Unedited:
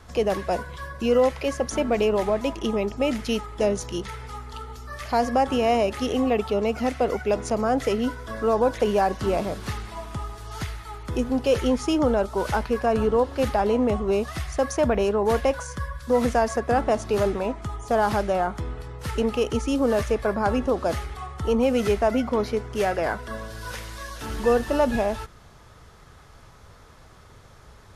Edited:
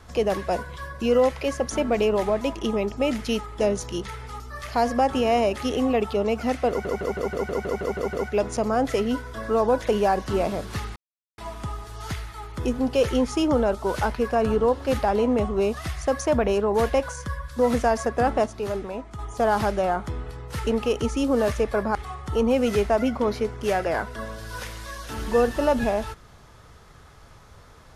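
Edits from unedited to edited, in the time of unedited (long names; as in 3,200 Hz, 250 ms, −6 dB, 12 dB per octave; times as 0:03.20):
0:04.40–0:04.77: remove
0:07.06: stutter 0.16 s, 10 plays
0:09.89: splice in silence 0.42 s
0:16.97–0:17.70: clip gain −6 dB
0:20.46–0:21.07: remove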